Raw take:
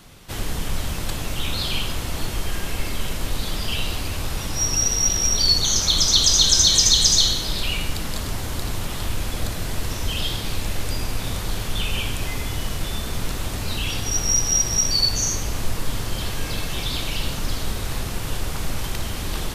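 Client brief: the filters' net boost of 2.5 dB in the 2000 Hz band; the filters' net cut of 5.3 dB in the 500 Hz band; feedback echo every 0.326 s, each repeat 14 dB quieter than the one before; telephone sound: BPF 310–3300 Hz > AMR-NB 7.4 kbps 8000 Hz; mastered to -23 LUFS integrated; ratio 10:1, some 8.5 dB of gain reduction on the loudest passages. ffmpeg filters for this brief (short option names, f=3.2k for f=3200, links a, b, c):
-af "equalizer=f=500:t=o:g=-6,equalizer=f=2k:t=o:g=4.5,acompressor=threshold=-20dB:ratio=10,highpass=310,lowpass=3.3k,aecho=1:1:326|652:0.2|0.0399,volume=14.5dB" -ar 8000 -c:a libopencore_amrnb -b:a 7400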